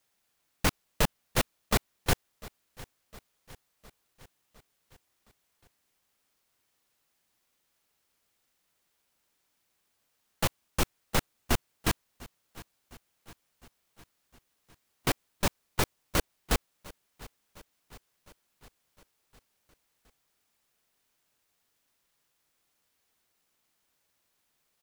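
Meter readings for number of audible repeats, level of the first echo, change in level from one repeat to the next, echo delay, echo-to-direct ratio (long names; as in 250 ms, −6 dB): 4, −21.0 dB, −4.5 dB, 708 ms, −19.0 dB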